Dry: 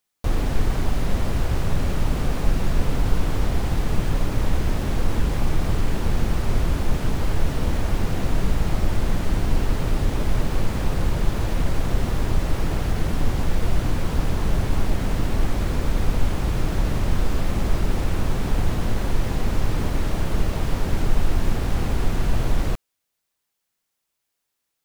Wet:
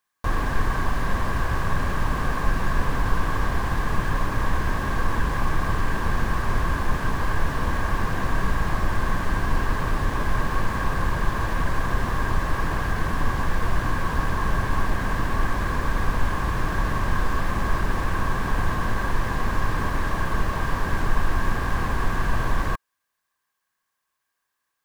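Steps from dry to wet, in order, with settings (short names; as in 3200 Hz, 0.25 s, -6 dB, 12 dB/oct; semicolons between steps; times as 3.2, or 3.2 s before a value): small resonant body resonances 1100/1600 Hz, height 17 dB, ringing for 20 ms; gain -3 dB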